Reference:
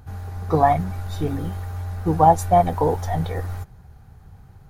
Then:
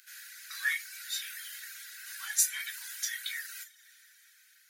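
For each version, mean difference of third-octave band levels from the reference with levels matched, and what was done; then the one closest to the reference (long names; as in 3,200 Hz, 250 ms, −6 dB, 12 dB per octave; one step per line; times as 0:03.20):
23.5 dB: coupled-rooms reverb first 0.52 s, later 4.2 s, from −21 dB, DRR 1.5 dB
reverb reduction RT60 0.58 s
Chebyshev high-pass filter 1,500 Hz, order 6
high-shelf EQ 2,200 Hz +10.5 dB
level −2 dB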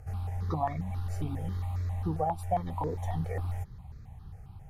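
4.5 dB: downward compressor 2.5 to 1, threshold −30 dBFS, peak gain reduction 14 dB
low-pass filter 11,000 Hz 12 dB per octave
parametric band 1,500 Hz −10.5 dB 0.25 octaves
step-sequenced phaser 7.4 Hz 990–3,000 Hz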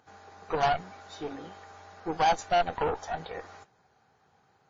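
7.0 dB: high-pass filter 400 Hz 12 dB per octave
harmonic generator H 8 −17 dB, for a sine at −3.5 dBFS
soft clipping −11.5 dBFS, distortion −13 dB
level −6 dB
WMA 32 kbit/s 16,000 Hz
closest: second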